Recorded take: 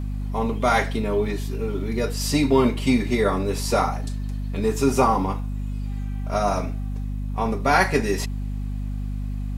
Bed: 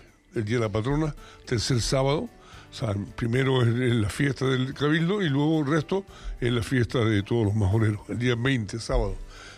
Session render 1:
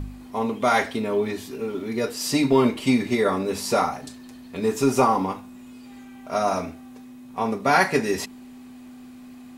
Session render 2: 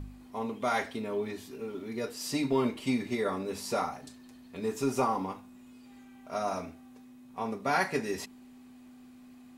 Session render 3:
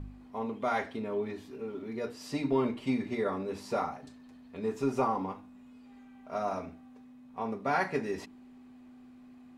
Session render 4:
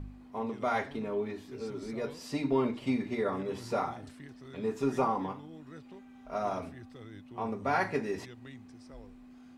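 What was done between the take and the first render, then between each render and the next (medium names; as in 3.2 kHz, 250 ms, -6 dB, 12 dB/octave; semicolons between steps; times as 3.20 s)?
de-hum 50 Hz, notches 4
trim -9.5 dB
low-pass 2 kHz 6 dB/octave; hum notches 60/120/180/240/300/360 Hz
add bed -26 dB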